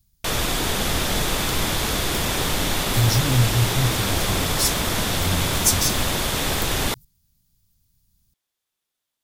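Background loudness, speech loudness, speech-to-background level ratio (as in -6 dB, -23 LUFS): -22.5 LUFS, -23.5 LUFS, -1.0 dB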